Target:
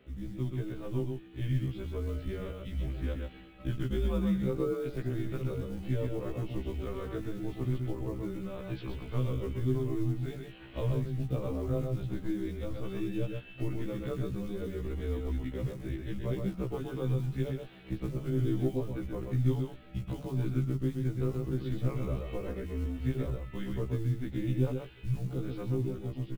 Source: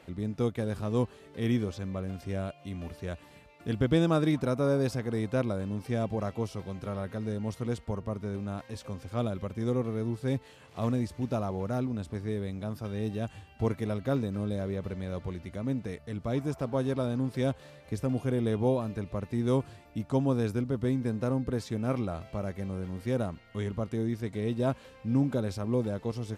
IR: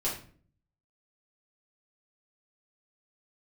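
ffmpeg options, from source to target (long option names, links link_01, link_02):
-filter_complex "[0:a]bandreject=frequency=293.2:width_type=h:width=4,bandreject=frequency=586.4:width_type=h:width=4,bandreject=frequency=879.6:width_type=h:width=4,bandreject=frequency=1172.8:width_type=h:width=4,bandreject=frequency=1466:width_type=h:width=4,bandreject=frequency=1759.2:width_type=h:width=4,bandreject=frequency=2052.4:width_type=h:width=4,bandreject=frequency=2345.6:width_type=h:width=4,bandreject=frequency=2638.8:width_type=h:width=4,bandreject=frequency=2932:width_type=h:width=4,bandreject=frequency=3225.2:width_type=h:width=4,bandreject=frequency=3518.4:width_type=h:width=4,bandreject=frequency=3811.6:width_type=h:width=4,bandreject=frequency=4104.8:width_type=h:width=4,bandreject=frequency=4398:width_type=h:width=4,bandreject=frequency=4691.2:width_type=h:width=4,bandreject=frequency=4984.4:width_type=h:width=4,bandreject=frequency=5277.6:width_type=h:width=4,bandreject=frequency=5570.8:width_type=h:width=4,bandreject=frequency=5864:width_type=h:width=4,bandreject=frequency=6157.2:width_type=h:width=4,bandreject=frequency=6450.4:width_type=h:width=4,bandreject=frequency=6743.6:width_type=h:width=4,bandreject=frequency=7036.8:width_type=h:width=4,bandreject=frequency=7330:width_type=h:width=4,bandreject=frequency=7623.2:width_type=h:width=4,bandreject=frequency=7916.4:width_type=h:width=4,bandreject=frequency=8209.6:width_type=h:width=4,bandreject=frequency=8502.8:width_type=h:width=4,bandreject=frequency=8796:width_type=h:width=4,bandreject=frequency=9089.2:width_type=h:width=4,bandreject=frequency=9382.4:width_type=h:width=4,bandreject=frequency=9675.6:width_type=h:width=4,bandreject=frequency=9968.8:width_type=h:width=4,bandreject=frequency=10262:width_type=h:width=4,dynaudnorm=framelen=740:gausssize=5:maxgain=10dB,equalizer=frequency=125:width_type=o:width=1:gain=5,equalizer=frequency=1000:width_type=o:width=1:gain=-9,equalizer=frequency=2000:width_type=o:width=1:gain=-4,highpass=frequency=150:width_type=q:width=0.5412,highpass=frequency=150:width_type=q:width=1.307,lowpass=frequency=3500:width_type=q:width=0.5176,lowpass=frequency=3500:width_type=q:width=0.7071,lowpass=frequency=3500:width_type=q:width=1.932,afreqshift=-110,acompressor=threshold=-30dB:ratio=3,asplit=2[link_01][link_02];[link_02]aecho=0:1:128:0.596[link_03];[link_01][link_03]amix=inputs=2:normalize=0,acrusher=bits=8:mode=log:mix=0:aa=0.000001,afftfilt=real='re*1.73*eq(mod(b,3),0)':imag='im*1.73*eq(mod(b,3),0)':win_size=2048:overlap=0.75"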